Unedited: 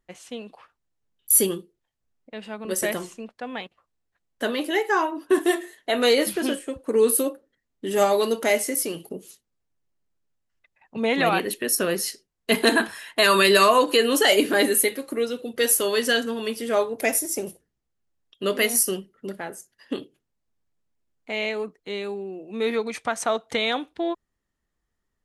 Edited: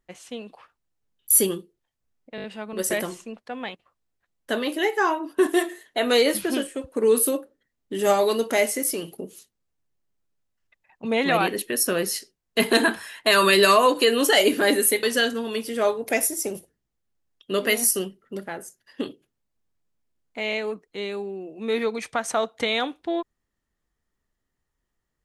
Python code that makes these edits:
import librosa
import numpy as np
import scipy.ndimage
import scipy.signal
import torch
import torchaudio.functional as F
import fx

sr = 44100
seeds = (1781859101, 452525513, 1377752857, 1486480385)

y = fx.edit(x, sr, fx.stutter(start_s=2.36, slice_s=0.02, count=5),
    fx.cut(start_s=14.95, length_s=1.0), tone=tone)